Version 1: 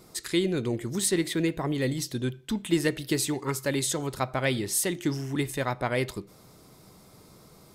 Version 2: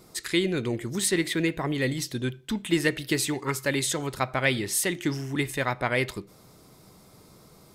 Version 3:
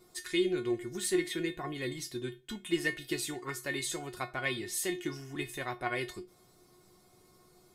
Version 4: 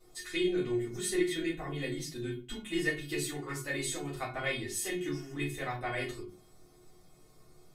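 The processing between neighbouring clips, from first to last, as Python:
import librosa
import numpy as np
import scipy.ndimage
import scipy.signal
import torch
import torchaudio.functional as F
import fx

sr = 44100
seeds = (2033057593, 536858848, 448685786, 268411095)

y1 = fx.dynamic_eq(x, sr, hz=2100.0, q=0.95, threshold_db=-46.0, ratio=4.0, max_db=6)
y2 = fx.comb_fb(y1, sr, f0_hz=360.0, decay_s=0.2, harmonics='all', damping=0.0, mix_pct=90)
y2 = y2 * 10.0 ** (4.0 / 20.0)
y3 = fx.room_shoebox(y2, sr, seeds[0], volume_m3=120.0, walls='furnished', distance_m=3.8)
y3 = y3 * 10.0 ** (-8.5 / 20.0)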